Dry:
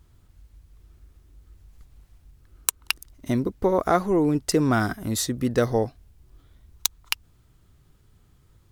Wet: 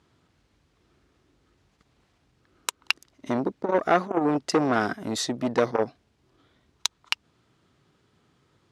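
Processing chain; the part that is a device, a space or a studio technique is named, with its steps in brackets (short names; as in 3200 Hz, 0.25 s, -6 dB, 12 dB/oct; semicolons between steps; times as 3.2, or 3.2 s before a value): public-address speaker with an overloaded transformer (core saturation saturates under 1900 Hz; BPF 210–5200 Hz); gain +2.5 dB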